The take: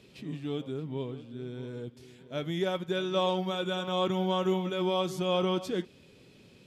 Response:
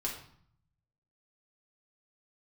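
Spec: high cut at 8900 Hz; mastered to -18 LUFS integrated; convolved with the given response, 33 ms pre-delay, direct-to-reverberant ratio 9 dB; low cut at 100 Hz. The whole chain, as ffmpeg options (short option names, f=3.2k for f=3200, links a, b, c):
-filter_complex "[0:a]highpass=100,lowpass=8.9k,asplit=2[a][b];[1:a]atrim=start_sample=2205,adelay=33[c];[b][c]afir=irnorm=-1:irlink=0,volume=-11.5dB[d];[a][d]amix=inputs=2:normalize=0,volume=13dB"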